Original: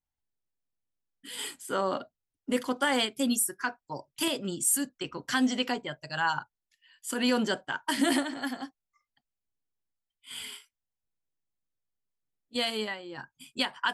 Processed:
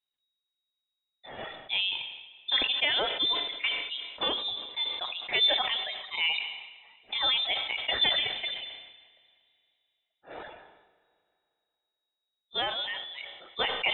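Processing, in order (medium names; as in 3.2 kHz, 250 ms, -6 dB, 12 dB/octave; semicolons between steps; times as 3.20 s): reverb removal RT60 1.1 s; frequency inversion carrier 3.8 kHz; Schroeder reverb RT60 2.5 s, combs from 30 ms, DRR 14.5 dB; decay stretcher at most 52 dB/s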